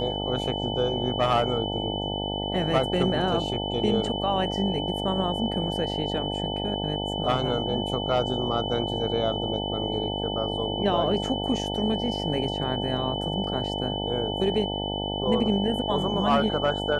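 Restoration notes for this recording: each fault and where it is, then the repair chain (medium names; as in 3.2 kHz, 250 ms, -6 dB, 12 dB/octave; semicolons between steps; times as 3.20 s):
buzz 50 Hz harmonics 18 -31 dBFS
whine 3 kHz -32 dBFS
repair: band-stop 3 kHz, Q 30; de-hum 50 Hz, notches 18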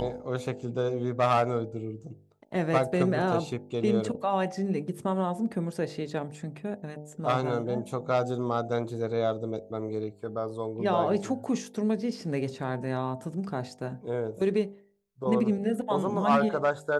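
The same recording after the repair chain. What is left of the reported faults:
nothing left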